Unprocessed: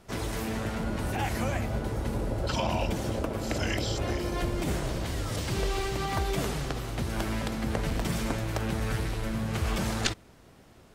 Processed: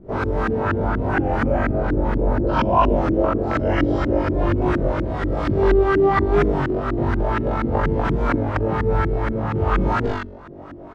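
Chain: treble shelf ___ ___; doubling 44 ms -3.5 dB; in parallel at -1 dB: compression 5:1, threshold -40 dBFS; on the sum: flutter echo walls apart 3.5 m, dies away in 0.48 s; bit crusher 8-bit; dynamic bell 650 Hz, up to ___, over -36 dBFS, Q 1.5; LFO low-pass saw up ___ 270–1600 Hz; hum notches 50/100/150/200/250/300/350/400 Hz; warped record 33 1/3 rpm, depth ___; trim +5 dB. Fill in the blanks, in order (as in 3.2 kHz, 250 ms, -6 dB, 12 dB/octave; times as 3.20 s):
2.9 kHz, +9 dB, -4 dB, 4.2 Hz, 100 cents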